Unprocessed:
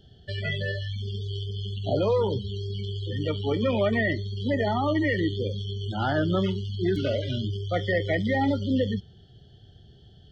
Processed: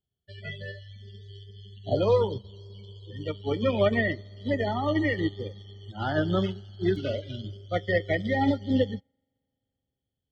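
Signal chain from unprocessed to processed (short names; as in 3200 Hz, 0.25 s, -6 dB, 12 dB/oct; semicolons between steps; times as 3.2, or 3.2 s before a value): reverb RT60 4.2 s, pre-delay 43 ms, DRR 18.5 dB; upward expander 2.5:1, over -46 dBFS; gain +3 dB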